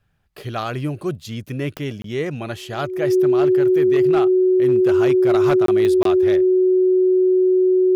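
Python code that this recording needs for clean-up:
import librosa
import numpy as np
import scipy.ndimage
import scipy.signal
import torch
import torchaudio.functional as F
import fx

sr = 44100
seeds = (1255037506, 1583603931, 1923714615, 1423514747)

y = fx.fix_declip(x, sr, threshold_db=-10.5)
y = fx.fix_declick_ar(y, sr, threshold=10.0)
y = fx.notch(y, sr, hz=370.0, q=30.0)
y = fx.fix_interpolate(y, sr, at_s=(2.02, 5.66, 6.03), length_ms=23.0)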